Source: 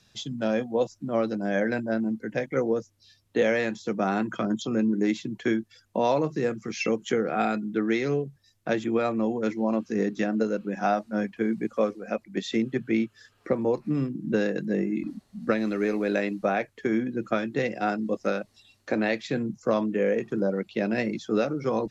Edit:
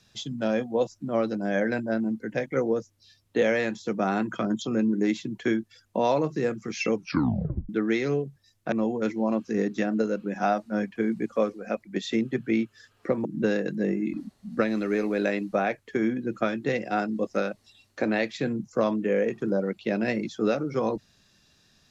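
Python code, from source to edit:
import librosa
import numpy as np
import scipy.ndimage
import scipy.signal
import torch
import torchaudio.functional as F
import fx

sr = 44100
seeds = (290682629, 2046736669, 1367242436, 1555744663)

y = fx.edit(x, sr, fx.tape_stop(start_s=6.93, length_s=0.76),
    fx.cut(start_s=8.72, length_s=0.41),
    fx.cut(start_s=13.66, length_s=0.49), tone=tone)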